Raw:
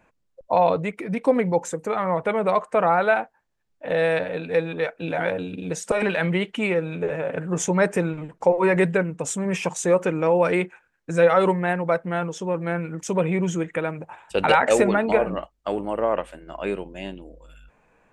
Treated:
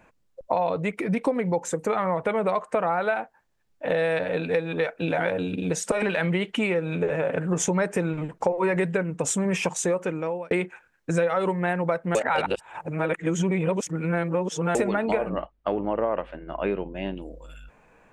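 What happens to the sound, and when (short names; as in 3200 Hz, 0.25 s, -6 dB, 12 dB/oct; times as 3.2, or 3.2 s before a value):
2.91–3.93 short-mantissa float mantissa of 8-bit
9.58–10.51 fade out
12.15–14.75 reverse
15.29–17.17 air absorption 310 m
whole clip: compressor 6:1, threshold -25 dBFS; gain +4 dB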